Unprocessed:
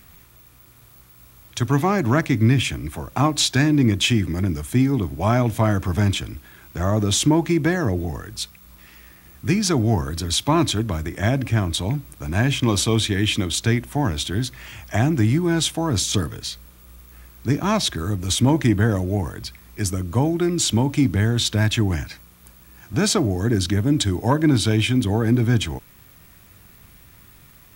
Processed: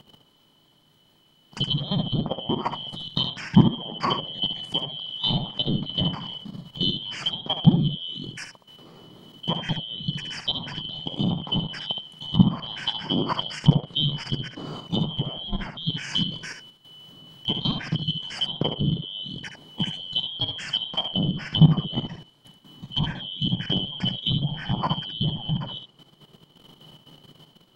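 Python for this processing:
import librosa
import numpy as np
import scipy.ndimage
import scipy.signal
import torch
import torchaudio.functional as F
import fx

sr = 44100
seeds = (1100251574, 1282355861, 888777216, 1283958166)

y = fx.band_shuffle(x, sr, order='2413')
y = fx.riaa(y, sr, side='playback')
y = fx.env_lowpass_down(y, sr, base_hz=1400.0, full_db=-17.0)
y = fx.low_shelf_res(y, sr, hz=100.0, db=-13.5, q=3.0)
y = fx.level_steps(y, sr, step_db=13)
y = y + 10.0 ** (-7.5 / 20.0) * np.pad(y, (int(70 * sr / 1000.0), 0))[:len(y)]
y = y * 10.0 ** (3.5 / 20.0)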